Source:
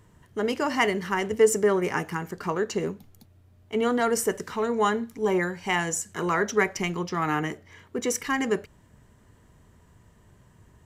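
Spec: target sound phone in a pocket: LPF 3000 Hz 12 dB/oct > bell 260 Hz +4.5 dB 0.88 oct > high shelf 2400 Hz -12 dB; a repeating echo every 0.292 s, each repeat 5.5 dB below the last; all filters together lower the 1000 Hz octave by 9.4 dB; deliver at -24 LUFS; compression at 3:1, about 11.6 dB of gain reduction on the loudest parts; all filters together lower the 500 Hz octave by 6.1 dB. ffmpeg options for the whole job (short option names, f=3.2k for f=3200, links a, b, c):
-af "equalizer=f=500:t=o:g=-7.5,equalizer=f=1k:t=o:g=-7.5,acompressor=threshold=-38dB:ratio=3,lowpass=3k,equalizer=f=260:t=o:w=0.88:g=4.5,highshelf=f=2.4k:g=-12,aecho=1:1:292|584|876|1168|1460|1752|2044:0.531|0.281|0.149|0.079|0.0419|0.0222|0.0118,volume=14dB"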